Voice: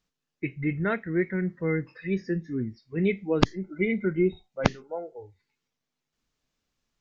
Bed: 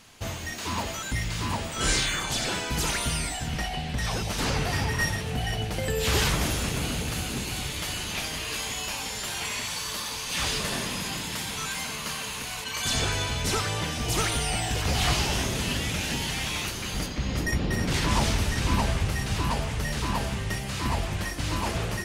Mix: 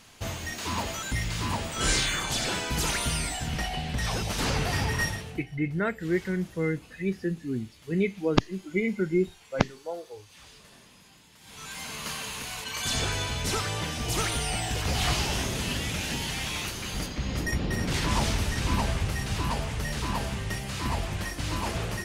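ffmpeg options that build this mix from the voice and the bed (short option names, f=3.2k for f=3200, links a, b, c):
-filter_complex "[0:a]adelay=4950,volume=-1dB[a];[1:a]volume=21dB,afade=t=out:st=4.96:d=0.49:silence=0.0707946,afade=t=in:st=11.4:d=0.66:silence=0.0841395[b];[a][b]amix=inputs=2:normalize=0"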